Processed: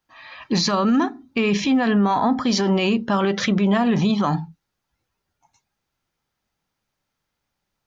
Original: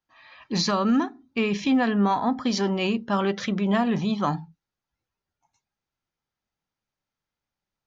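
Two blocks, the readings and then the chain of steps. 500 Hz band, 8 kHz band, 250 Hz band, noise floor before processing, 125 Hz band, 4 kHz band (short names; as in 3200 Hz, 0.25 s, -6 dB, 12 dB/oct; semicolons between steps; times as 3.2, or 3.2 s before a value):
+4.0 dB, n/a, +4.5 dB, under -85 dBFS, +5.5 dB, +5.0 dB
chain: limiter -20.5 dBFS, peak gain reduction 8.5 dB; gain +9 dB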